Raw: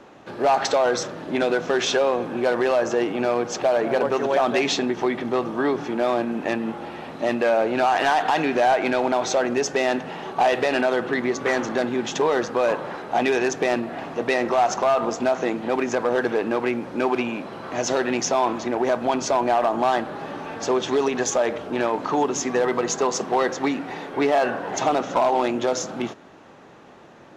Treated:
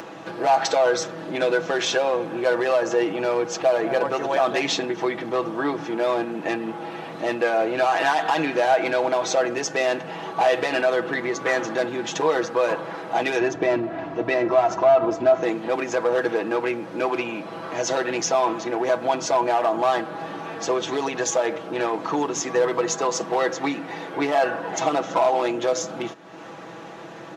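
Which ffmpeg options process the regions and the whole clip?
ffmpeg -i in.wav -filter_complex "[0:a]asettb=1/sr,asplit=3[link_01][link_02][link_03];[link_01]atrim=end=13.404[link_04];[link_02]atrim=start=13.4:end=15.43,asetpts=PTS-STARTPTS,afade=type=in:duration=0.004:curve=qsin,afade=type=out:start_time=2.026:duration=0.004:curve=qsin,lowpass=frequency=2000:poles=1,equalizer=frequency=86:width_type=o:width=1.4:gain=15,aecho=1:1:3:0.45,atrim=end_sample=89523[link_05];[link_03]atrim=start=15.426[link_06];[link_04][link_05]acrossfade=duration=0.004:curve1=hsin:curve2=qsin[link_07];[link_07][link_06]acrossfade=duration=0.004:curve1=qsin:curve2=hsin,acompressor=mode=upward:threshold=-28dB:ratio=2.5,highpass=frequency=150:poles=1,aecho=1:1:6.1:0.62,volume=-1.5dB" out.wav

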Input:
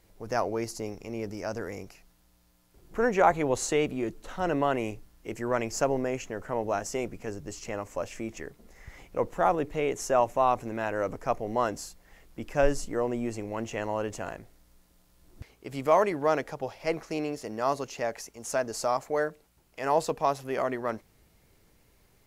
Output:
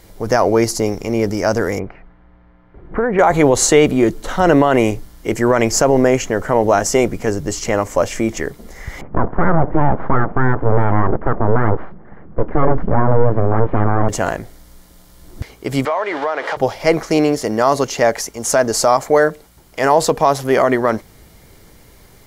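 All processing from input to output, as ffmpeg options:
ffmpeg -i in.wav -filter_complex "[0:a]asettb=1/sr,asplit=3[link_01][link_02][link_03];[link_01]atrim=end=1.794[link_04];[link_02]atrim=start=1.79:end=3.19,asetpts=PTS-STARTPTS,afade=type=in:duration=0.004:curve=qsin,afade=type=out:start_time=1.396:duration=0.004:curve=qsin,lowpass=frequency=2100:width=0.5412,lowpass=frequency=2100:width=1.3066,acompressor=threshold=-31dB:ratio=5:attack=3.2:release=140:knee=1:detection=peak[link_05];[link_03]atrim=start=3.186[link_06];[link_04][link_05]acrossfade=duration=0.004:curve1=hsin:curve2=qsin[link_07];[link_07][link_06]acrossfade=duration=0.004:curve1=qsin:curve2=hsin,asettb=1/sr,asplit=3[link_08][link_09][link_10];[link_08]atrim=end=9.014[link_11];[link_09]atrim=start=9.01:end=14.09,asetpts=PTS-STARTPTS,afade=type=in:duration=0.004:curve=qsin,afade=type=out:start_time=5.076:duration=0.004:curve=qsin,equalizer=frequency=190:width=1.3:gain=13,aeval=exprs='abs(val(0))':channel_layout=same,lowpass=frequency=1500:width=0.5412,lowpass=frequency=1500:width=1.3066[link_12];[link_10]atrim=start=14.086[link_13];[link_11][link_12]acrossfade=duration=0.004:curve1=hsin:curve2=qsin[link_14];[link_14][link_13]acrossfade=duration=0.004:curve1=qsin:curve2=hsin,asettb=1/sr,asplit=3[link_15][link_16][link_17];[link_15]atrim=end=15.854[link_18];[link_16]atrim=start=15.85:end=16.57,asetpts=PTS-STARTPTS,afade=type=in:duration=0.004:curve=qsin,afade=type=out:start_time=0.716:duration=0.004:curve=qsin,aeval=exprs='val(0)+0.5*0.02*sgn(val(0))':channel_layout=same,highpass=630,lowpass=3000,acompressor=threshold=-33dB:ratio=6:attack=3.2:release=140:knee=1:detection=peak[link_19];[link_17]atrim=start=16.566[link_20];[link_18][link_19]acrossfade=duration=0.004:curve1=hsin:curve2=qsin[link_21];[link_21][link_20]acrossfade=duration=0.004:curve1=qsin:curve2=hsin,bandreject=frequency=2600:width=8.7,alimiter=level_in=18.5dB:limit=-1dB:release=50:level=0:latency=1,volume=-1dB" out.wav

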